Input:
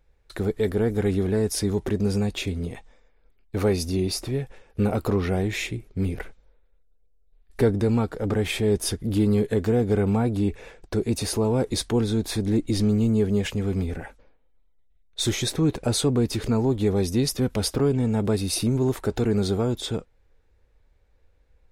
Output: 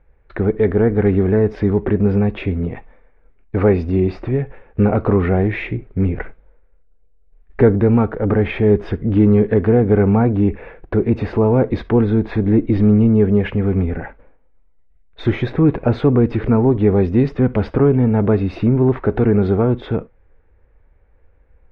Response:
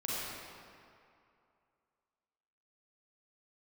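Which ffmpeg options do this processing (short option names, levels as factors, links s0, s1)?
-filter_complex "[0:a]lowpass=f=2200:w=0.5412,lowpass=f=2200:w=1.3066,asplit=2[s0][s1];[1:a]atrim=start_sample=2205,atrim=end_sample=3528[s2];[s1][s2]afir=irnorm=-1:irlink=0,volume=0.133[s3];[s0][s3]amix=inputs=2:normalize=0,volume=2.37"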